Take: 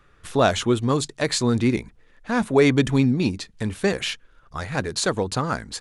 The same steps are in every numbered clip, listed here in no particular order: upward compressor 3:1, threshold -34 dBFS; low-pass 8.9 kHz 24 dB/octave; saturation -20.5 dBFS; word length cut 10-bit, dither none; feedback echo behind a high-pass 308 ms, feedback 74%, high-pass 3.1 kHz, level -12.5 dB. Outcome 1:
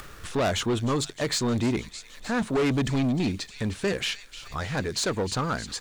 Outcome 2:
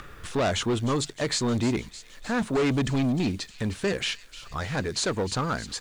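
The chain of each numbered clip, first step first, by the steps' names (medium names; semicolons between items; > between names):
low-pass > word length cut > upward compressor > feedback echo behind a high-pass > saturation; upward compressor > saturation > low-pass > word length cut > feedback echo behind a high-pass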